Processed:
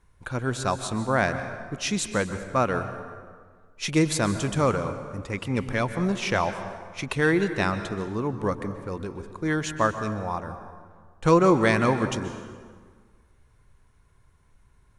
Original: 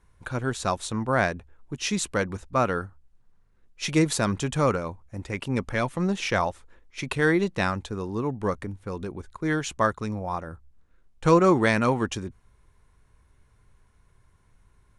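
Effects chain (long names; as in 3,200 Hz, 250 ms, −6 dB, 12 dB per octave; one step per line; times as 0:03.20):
dense smooth reverb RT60 1.7 s, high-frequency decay 0.65×, pre-delay 115 ms, DRR 9.5 dB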